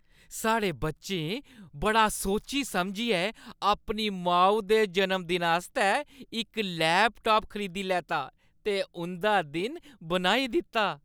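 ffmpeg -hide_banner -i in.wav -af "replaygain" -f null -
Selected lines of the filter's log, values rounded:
track_gain = +7.0 dB
track_peak = 0.227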